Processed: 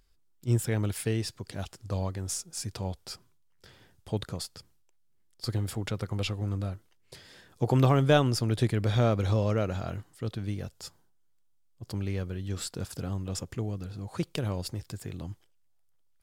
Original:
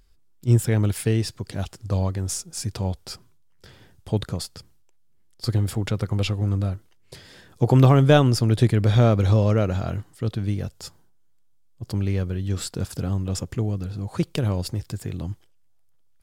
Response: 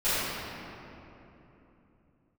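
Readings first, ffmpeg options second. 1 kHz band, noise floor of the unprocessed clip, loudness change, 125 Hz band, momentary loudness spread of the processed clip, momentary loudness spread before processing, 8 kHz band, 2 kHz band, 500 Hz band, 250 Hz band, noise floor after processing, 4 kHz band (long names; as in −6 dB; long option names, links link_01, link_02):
−5.0 dB, −56 dBFS, −7.5 dB, −8.5 dB, 16 LU, 15 LU, −4.5 dB, −4.5 dB, −6.0 dB, −7.5 dB, −65 dBFS, −4.5 dB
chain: -af "lowshelf=frequency=340:gain=-4.5,volume=-4.5dB"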